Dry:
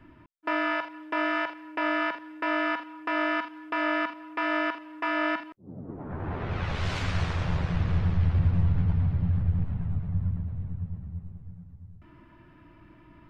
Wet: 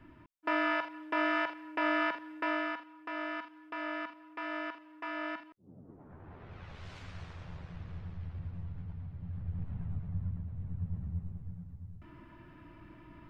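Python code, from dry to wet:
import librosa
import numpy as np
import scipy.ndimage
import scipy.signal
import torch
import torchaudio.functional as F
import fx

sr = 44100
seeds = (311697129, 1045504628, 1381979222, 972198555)

y = fx.gain(x, sr, db=fx.line((2.38, -3.0), (2.84, -11.0), (5.6, -11.0), (6.23, -18.0), (9.14, -18.0), (9.78, -8.0), (10.51, -8.0), (11.02, 0.0)))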